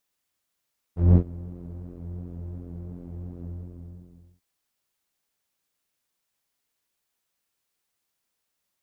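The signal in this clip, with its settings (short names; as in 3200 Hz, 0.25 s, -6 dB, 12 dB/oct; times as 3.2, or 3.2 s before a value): synth patch with pulse-width modulation F2, noise 0 dB, filter lowpass, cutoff 220 Hz, Q 0.71, filter envelope 1.5 oct, filter decay 0.08 s, attack 0.194 s, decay 0.08 s, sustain -23 dB, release 0.96 s, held 2.49 s, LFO 2.8 Hz, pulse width 24%, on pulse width 15%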